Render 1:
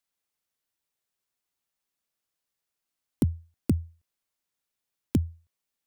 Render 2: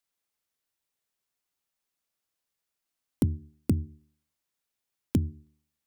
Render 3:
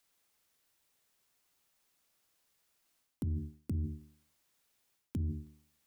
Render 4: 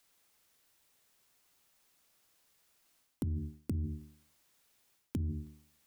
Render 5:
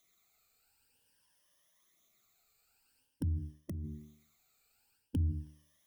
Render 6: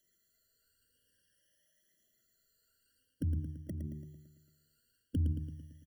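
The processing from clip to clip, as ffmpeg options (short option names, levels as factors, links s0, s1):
-af "bandreject=f=75.32:t=h:w=4,bandreject=f=150.64:t=h:w=4,bandreject=f=225.96:t=h:w=4,bandreject=f=301.28:t=h:w=4,bandreject=f=376.6:t=h:w=4"
-af "areverse,acompressor=threshold=0.0251:ratio=6,areverse,alimiter=level_in=5.01:limit=0.0631:level=0:latency=1:release=27,volume=0.2,volume=2.82"
-af "acompressor=threshold=0.0141:ratio=4,volume=1.68"
-af "afftfilt=real='re*pow(10,13/40*sin(2*PI*(1.2*log(max(b,1)*sr/1024/100)/log(2)-(0.49)*(pts-256)/sr)))':imag='im*pow(10,13/40*sin(2*PI*(1.2*log(max(b,1)*sr/1024/100)/log(2)-(0.49)*(pts-256)/sr)))':win_size=1024:overlap=0.75,flanger=delay=0.3:depth=1.4:regen=39:speed=0.97:shape=sinusoidal"
-af "aecho=1:1:112|224|336|448|560|672|784:0.422|0.232|0.128|0.0702|0.0386|0.0212|0.0117,afftfilt=real='re*eq(mod(floor(b*sr/1024/680),2),0)':imag='im*eq(mod(floor(b*sr/1024/680),2),0)':win_size=1024:overlap=0.75"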